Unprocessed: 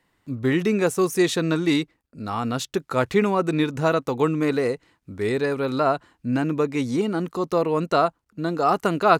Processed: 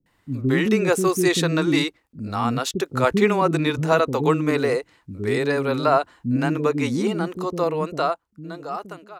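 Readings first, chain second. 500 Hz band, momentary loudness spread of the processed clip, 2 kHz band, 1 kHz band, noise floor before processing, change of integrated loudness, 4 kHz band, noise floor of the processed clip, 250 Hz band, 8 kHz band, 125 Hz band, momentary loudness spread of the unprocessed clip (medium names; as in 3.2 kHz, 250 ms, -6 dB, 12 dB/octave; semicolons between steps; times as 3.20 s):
+0.5 dB, 13 LU, +2.5 dB, -0.5 dB, -71 dBFS, +1.5 dB, +3.0 dB, -66 dBFS, +0.5 dB, +3.5 dB, +2.5 dB, 8 LU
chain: fade out at the end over 2.36 s; bands offset in time lows, highs 60 ms, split 330 Hz; trim +3.5 dB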